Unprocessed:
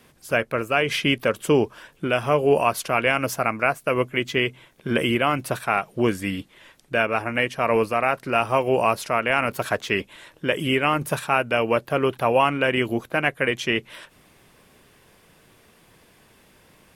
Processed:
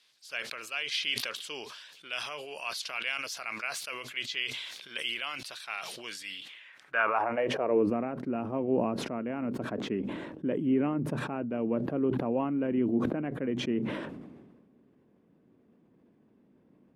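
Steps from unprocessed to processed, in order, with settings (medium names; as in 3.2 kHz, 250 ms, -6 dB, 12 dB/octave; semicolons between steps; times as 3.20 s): band-pass sweep 4.2 kHz -> 250 Hz, 6.30–7.94 s; decay stretcher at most 38 dB/s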